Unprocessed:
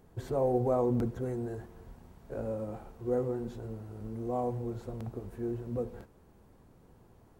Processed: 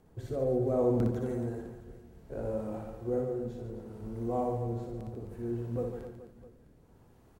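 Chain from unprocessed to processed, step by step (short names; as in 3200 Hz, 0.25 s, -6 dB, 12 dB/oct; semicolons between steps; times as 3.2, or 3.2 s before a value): rotary speaker horn 0.65 Hz; reverse bouncing-ball echo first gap 60 ms, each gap 1.4×, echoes 5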